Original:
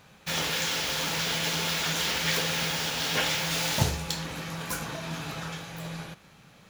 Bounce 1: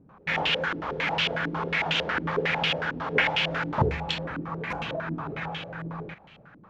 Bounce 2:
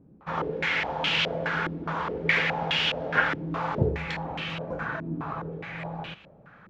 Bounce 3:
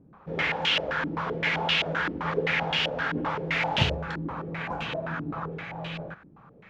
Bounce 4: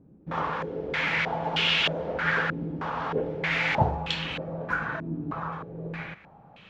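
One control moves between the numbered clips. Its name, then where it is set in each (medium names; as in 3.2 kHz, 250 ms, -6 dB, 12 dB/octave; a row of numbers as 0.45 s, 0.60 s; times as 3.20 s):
step-sequenced low-pass, rate: 11 Hz, 4.8 Hz, 7.7 Hz, 3.2 Hz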